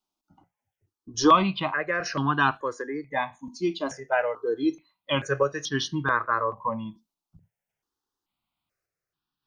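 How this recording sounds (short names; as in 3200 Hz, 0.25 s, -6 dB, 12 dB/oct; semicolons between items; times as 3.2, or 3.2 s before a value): random-step tremolo 3.5 Hz; notches that jump at a steady rate 2.3 Hz 490–2100 Hz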